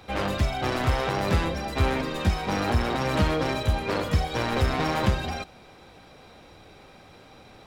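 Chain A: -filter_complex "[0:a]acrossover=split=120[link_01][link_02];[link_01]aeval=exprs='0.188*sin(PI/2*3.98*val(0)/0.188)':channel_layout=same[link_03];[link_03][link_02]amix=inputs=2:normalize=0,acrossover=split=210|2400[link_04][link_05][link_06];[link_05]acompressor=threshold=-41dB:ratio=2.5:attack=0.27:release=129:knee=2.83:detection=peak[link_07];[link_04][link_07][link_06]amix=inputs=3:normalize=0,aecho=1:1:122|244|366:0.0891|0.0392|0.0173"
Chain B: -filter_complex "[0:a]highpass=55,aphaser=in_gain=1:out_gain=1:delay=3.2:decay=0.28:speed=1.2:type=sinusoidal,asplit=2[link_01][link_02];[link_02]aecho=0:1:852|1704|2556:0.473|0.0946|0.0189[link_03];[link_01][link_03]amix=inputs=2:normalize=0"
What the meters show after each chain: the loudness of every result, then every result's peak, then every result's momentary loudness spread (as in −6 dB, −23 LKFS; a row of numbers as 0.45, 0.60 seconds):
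−24.5, −25.0 LKFS; −10.5, −8.0 dBFS; 3, 15 LU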